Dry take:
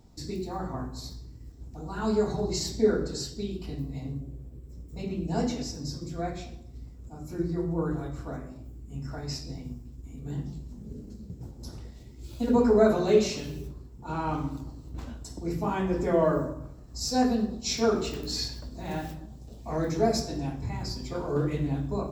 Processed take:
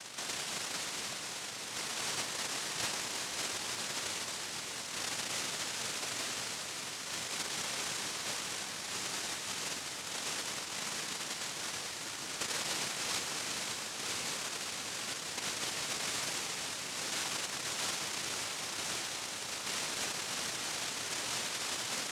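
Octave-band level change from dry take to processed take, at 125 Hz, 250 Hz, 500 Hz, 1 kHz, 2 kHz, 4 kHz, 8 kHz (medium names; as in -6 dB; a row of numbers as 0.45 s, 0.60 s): -20.0 dB, -20.0 dB, -18.5 dB, -6.5 dB, +5.5 dB, +4.5 dB, +7.0 dB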